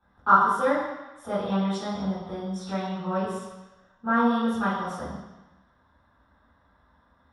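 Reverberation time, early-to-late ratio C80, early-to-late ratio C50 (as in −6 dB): 1.1 s, 3.0 dB, 0.5 dB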